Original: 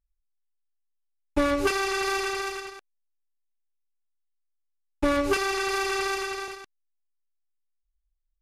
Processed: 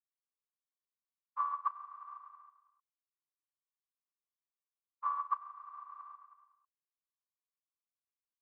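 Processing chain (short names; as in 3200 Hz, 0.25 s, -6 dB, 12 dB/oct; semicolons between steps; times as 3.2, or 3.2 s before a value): spectral contrast lowered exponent 0.3; Butterworth band-pass 1100 Hz, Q 7.2; upward expander 2.5:1, over -50 dBFS; gain +5.5 dB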